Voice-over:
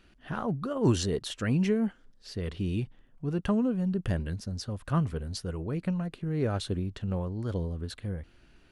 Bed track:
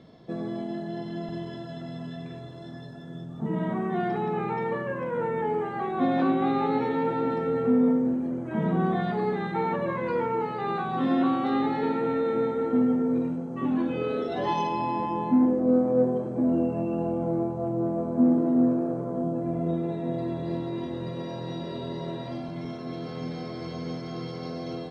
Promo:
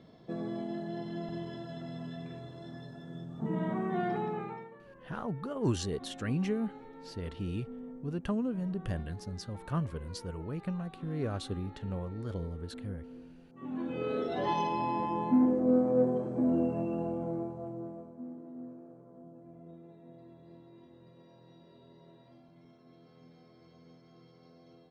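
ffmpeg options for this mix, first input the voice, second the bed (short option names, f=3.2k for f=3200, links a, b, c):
-filter_complex "[0:a]adelay=4800,volume=-5.5dB[a];[1:a]volume=15dB,afade=t=out:st=4.16:d=0.54:silence=0.112202,afade=t=in:st=13.52:d=0.65:silence=0.105925,afade=t=out:st=16.67:d=1.51:silence=0.105925[b];[a][b]amix=inputs=2:normalize=0"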